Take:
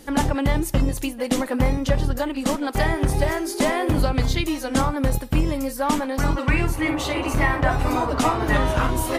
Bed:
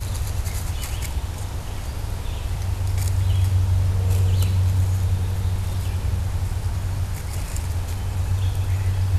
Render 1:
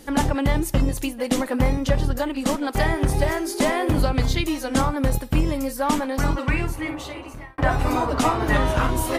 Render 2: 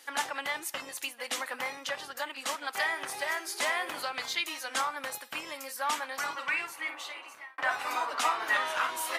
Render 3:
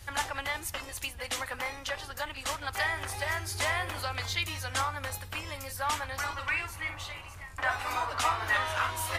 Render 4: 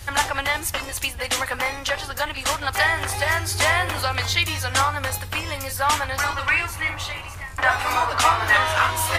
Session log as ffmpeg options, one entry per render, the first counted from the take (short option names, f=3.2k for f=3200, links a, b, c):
-filter_complex "[0:a]asplit=2[a][b];[a]atrim=end=7.58,asetpts=PTS-STARTPTS,afade=t=out:st=6.2:d=1.38[c];[b]atrim=start=7.58,asetpts=PTS-STARTPTS,afade=t=in:d=0.004:c=hsin[d];[c][d]concat=n=2:v=0:a=1"
-af "highpass=1.3k,highshelf=f=4.1k:g=-6"
-filter_complex "[1:a]volume=-22dB[a];[0:a][a]amix=inputs=2:normalize=0"
-af "volume=10.5dB"